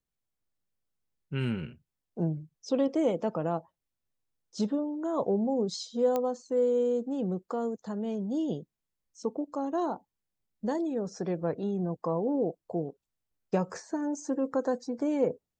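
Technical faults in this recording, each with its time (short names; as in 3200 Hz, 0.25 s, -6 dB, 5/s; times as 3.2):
6.16 pop -17 dBFS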